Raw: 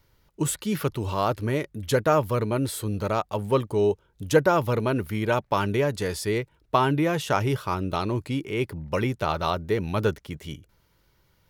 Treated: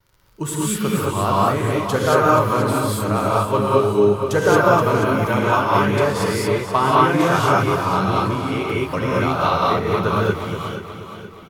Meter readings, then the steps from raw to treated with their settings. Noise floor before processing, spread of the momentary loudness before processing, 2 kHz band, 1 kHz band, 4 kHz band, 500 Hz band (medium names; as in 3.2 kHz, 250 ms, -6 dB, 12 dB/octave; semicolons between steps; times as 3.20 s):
-65 dBFS, 7 LU, +9.0 dB, +10.0 dB, +6.5 dB, +6.5 dB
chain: gate with hold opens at -55 dBFS; peaking EQ 1.2 kHz +5.5 dB 0.91 oct; gated-style reverb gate 250 ms rising, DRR -5.5 dB; crackle 31 per s -40 dBFS; on a send: feedback delay 478 ms, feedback 43%, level -10 dB; on the sum: modulated delay 240 ms, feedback 64%, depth 51 cents, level -15 dB; trim -1.5 dB